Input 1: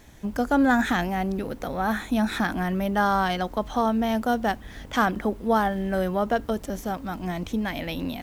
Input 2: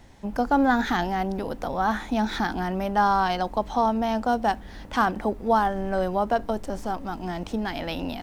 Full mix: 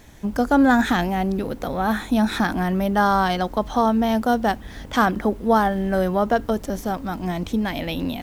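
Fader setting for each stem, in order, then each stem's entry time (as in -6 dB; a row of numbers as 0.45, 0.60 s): +3.0, -9.5 dB; 0.00, 0.00 s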